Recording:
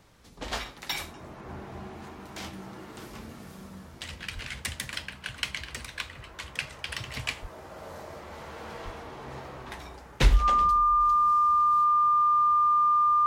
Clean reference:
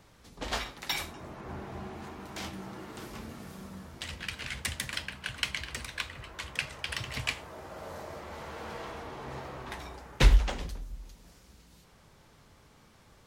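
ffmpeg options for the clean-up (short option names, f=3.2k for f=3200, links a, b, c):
-filter_complex "[0:a]bandreject=f=1.2k:w=30,asplit=3[a][b][c];[a]afade=t=out:st=4.34:d=0.02[d];[b]highpass=f=140:w=0.5412,highpass=f=140:w=1.3066,afade=t=in:st=4.34:d=0.02,afade=t=out:st=4.46:d=0.02[e];[c]afade=t=in:st=4.46:d=0.02[f];[d][e][f]amix=inputs=3:normalize=0,asplit=3[g][h][i];[g]afade=t=out:st=7.41:d=0.02[j];[h]highpass=f=140:w=0.5412,highpass=f=140:w=1.3066,afade=t=in:st=7.41:d=0.02,afade=t=out:st=7.53:d=0.02[k];[i]afade=t=in:st=7.53:d=0.02[l];[j][k][l]amix=inputs=3:normalize=0,asplit=3[m][n][o];[m]afade=t=out:st=8.84:d=0.02[p];[n]highpass=f=140:w=0.5412,highpass=f=140:w=1.3066,afade=t=in:st=8.84:d=0.02,afade=t=out:st=8.96:d=0.02[q];[o]afade=t=in:st=8.96:d=0.02[r];[p][q][r]amix=inputs=3:normalize=0,asetnsamples=n=441:p=0,asendcmd='11 volume volume -4.5dB',volume=0dB"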